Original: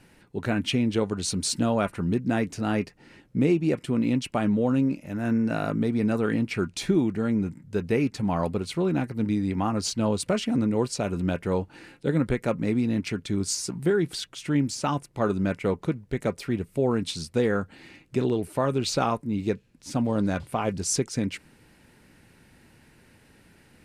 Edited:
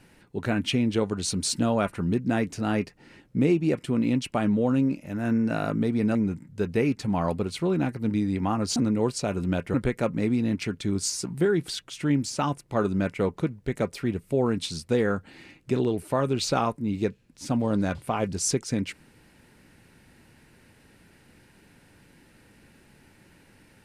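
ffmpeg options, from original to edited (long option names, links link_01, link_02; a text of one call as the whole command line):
ffmpeg -i in.wav -filter_complex "[0:a]asplit=4[link_01][link_02][link_03][link_04];[link_01]atrim=end=6.152[link_05];[link_02]atrim=start=7.298:end=9.912[link_06];[link_03]atrim=start=10.518:end=11.502[link_07];[link_04]atrim=start=12.188[link_08];[link_05][link_06]acrossfade=duration=0.004:curve1=hsin:curve2=hsin[link_09];[link_09][link_07]acrossfade=duration=0.004:curve1=hsin:curve2=hsin[link_10];[link_10][link_08]acrossfade=duration=0.004:curve1=hsin:curve2=hsin" out.wav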